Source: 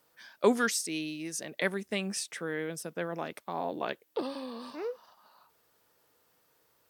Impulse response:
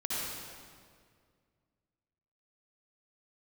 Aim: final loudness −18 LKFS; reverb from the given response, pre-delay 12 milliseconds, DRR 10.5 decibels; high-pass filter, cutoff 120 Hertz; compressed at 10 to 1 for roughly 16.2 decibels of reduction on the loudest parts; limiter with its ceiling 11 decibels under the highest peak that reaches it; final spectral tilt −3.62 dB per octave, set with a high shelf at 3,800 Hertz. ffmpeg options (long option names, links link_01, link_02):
-filter_complex "[0:a]highpass=120,highshelf=frequency=3800:gain=-4.5,acompressor=threshold=-36dB:ratio=10,alimiter=level_in=9dB:limit=-24dB:level=0:latency=1,volume=-9dB,asplit=2[link_01][link_02];[1:a]atrim=start_sample=2205,adelay=12[link_03];[link_02][link_03]afir=irnorm=-1:irlink=0,volume=-16.5dB[link_04];[link_01][link_04]amix=inputs=2:normalize=0,volume=25.5dB"